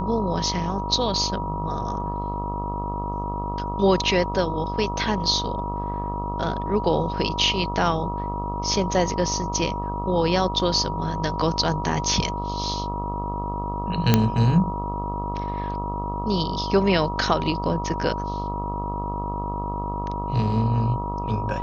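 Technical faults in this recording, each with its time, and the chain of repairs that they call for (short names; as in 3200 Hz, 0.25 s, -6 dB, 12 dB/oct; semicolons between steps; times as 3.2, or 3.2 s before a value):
buzz 50 Hz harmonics 26 -30 dBFS
tone 960 Hz -29 dBFS
14.14 pop -2 dBFS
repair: de-click; de-hum 50 Hz, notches 26; notch 960 Hz, Q 30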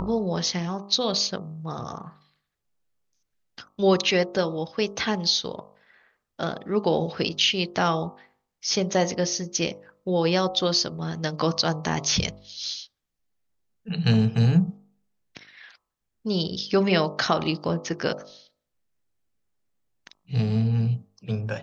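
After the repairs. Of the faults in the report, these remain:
none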